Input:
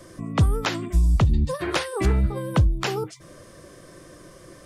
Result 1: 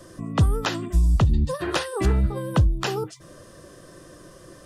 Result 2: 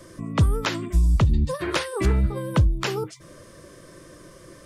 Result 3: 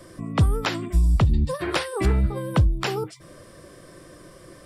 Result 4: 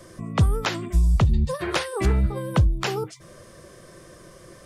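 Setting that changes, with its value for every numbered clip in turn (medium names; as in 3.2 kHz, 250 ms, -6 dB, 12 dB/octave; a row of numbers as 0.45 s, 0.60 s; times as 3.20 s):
band-stop, frequency: 2.2 kHz, 750 Hz, 6.4 kHz, 290 Hz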